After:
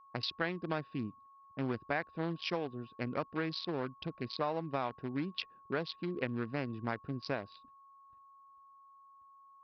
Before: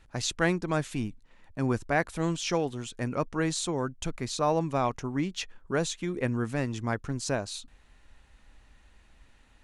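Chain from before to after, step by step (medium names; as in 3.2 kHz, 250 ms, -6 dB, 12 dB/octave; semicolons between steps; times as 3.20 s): local Wiener filter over 41 samples; gate -49 dBFS, range -24 dB; high-pass 92 Hz 12 dB/octave; tilt EQ +2 dB/octave; compression 5:1, threshold -31 dBFS, peak gain reduction 10 dB; resampled via 11.025 kHz; whistle 1.1 kHz -57 dBFS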